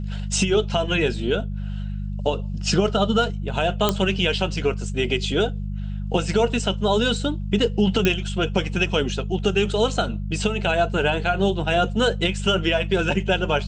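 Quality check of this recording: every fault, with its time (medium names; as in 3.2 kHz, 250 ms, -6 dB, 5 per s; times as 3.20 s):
hum 50 Hz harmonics 4 -28 dBFS
3.89 s: pop -4 dBFS
8.05 s: pop -6 dBFS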